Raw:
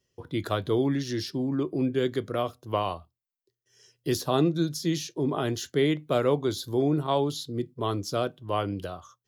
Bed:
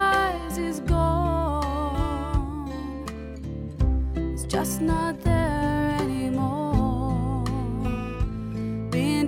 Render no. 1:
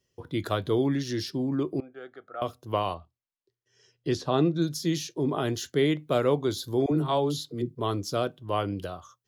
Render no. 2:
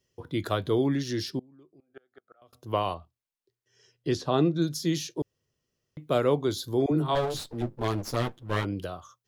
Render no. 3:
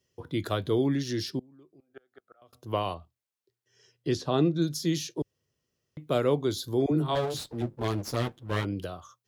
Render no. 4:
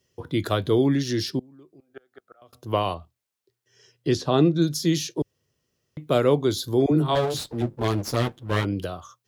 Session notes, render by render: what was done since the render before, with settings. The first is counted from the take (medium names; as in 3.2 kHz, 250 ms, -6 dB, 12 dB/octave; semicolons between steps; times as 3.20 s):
1.80–2.42 s: two resonant band-passes 1 kHz, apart 0.77 oct; 2.94–4.62 s: distance through air 100 m; 6.86–7.75 s: phase dispersion lows, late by 53 ms, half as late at 400 Hz
1.39–2.53 s: inverted gate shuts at -34 dBFS, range -28 dB; 5.22–5.97 s: room tone; 7.15–8.65 s: comb filter that takes the minimum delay 8.9 ms
dynamic bell 1 kHz, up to -3 dB, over -39 dBFS, Q 0.77; high-pass 42 Hz
trim +5.5 dB